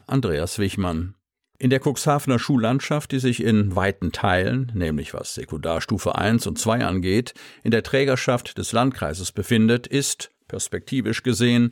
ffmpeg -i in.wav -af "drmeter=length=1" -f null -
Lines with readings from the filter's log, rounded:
Channel 1: DR: 9.7
Overall DR: 9.7